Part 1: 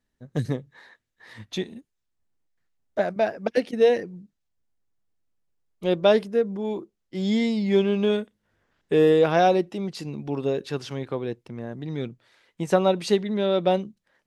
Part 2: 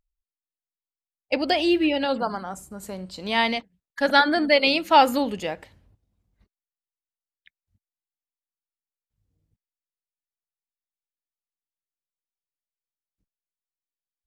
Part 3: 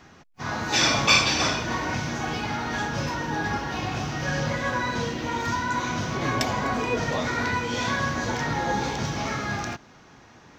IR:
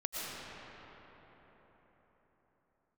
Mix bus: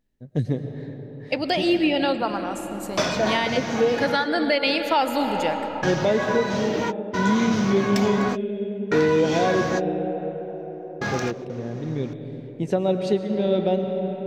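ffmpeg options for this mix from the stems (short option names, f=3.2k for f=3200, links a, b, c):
-filter_complex "[0:a]lowpass=f=2.1k:p=1,equalizer=f=1.2k:t=o:w=1.1:g=-11,volume=0.5dB,asplit=3[a][b][c];[a]atrim=end=9.72,asetpts=PTS-STARTPTS,afade=t=out:st=9.716:d=0.004:c=hsin[d];[b]atrim=start=9.72:end=11.01,asetpts=PTS-STARTPTS,volume=0[e];[c]atrim=start=11.01,asetpts=PTS-STARTPTS,afade=t=in:d=0.004:c=hsin[f];[d][e][f]concat=n=3:v=0:a=1,asplit=3[g][h][i];[h]volume=-6.5dB[j];[1:a]volume=1dB,asplit=2[k][l];[l]volume=-11.5dB[m];[2:a]highpass=110,asoftclip=type=tanh:threshold=-16.5dB,adelay=1550,volume=2.5dB[n];[i]apad=whole_len=535045[o];[n][o]sidechaingate=range=-50dB:threshold=-43dB:ratio=16:detection=peak[p];[3:a]atrim=start_sample=2205[q];[j][m]amix=inputs=2:normalize=0[r];[r][q]afir=irnorm=-1:irlink=0[s];[g][k][p][s]amix=inputs=4:normalize=0,alimiter=limit=-10.5dB:level=0:latency=1:release=415"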